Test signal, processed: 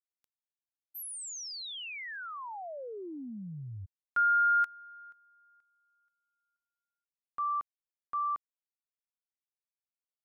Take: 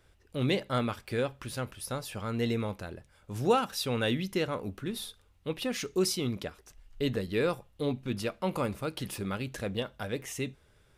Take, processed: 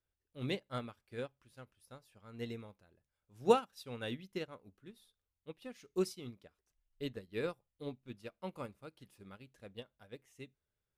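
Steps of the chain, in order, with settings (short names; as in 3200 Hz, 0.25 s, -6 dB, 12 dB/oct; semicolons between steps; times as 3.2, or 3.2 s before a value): upward expander 2.5:1, over -38 dBFS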